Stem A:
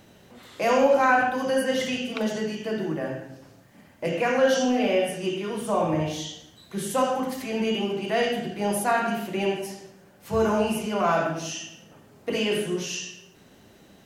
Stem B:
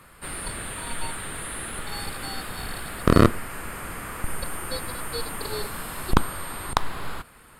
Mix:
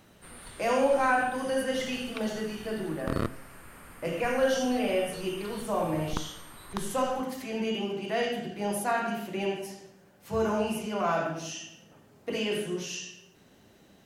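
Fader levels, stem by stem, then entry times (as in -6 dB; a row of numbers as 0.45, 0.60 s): -5.0, -14.5 dB; 0.00, 0.00 s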